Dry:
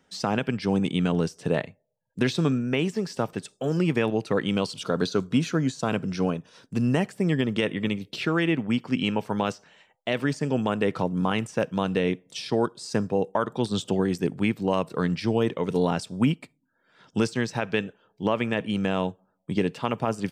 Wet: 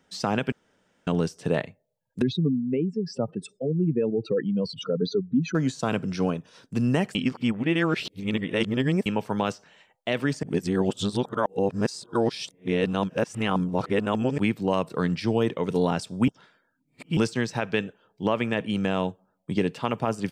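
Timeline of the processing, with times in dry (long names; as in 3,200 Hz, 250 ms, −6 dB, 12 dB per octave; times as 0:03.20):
0:00.52–0:01.07: fill with room tone
0:02.22–0:05.55: expanding power law on the bin magnitudes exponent 2.5
0:07.15–0:09.06: reverse
0:10.43–0:14.38: reverse
0:16.28–0:17.17: reverse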